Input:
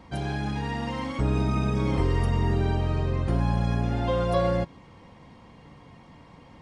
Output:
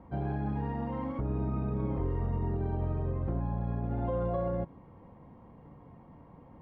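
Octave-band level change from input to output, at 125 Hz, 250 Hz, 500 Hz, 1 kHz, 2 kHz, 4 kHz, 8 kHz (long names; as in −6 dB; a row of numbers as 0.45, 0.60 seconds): −6.5 dB, −6.0 dB, −7.0 dB, −8.0 dB, −15.5 dB, below −25 dB, can't be measured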